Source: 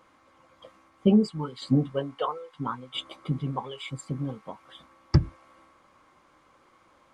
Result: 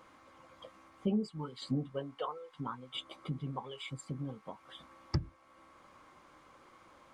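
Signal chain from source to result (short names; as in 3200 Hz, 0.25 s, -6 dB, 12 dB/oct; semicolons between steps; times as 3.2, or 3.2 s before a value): compressor 1.5:1, threshold -54 dBFS, peak gain reduction 14 dB; gain +1 dB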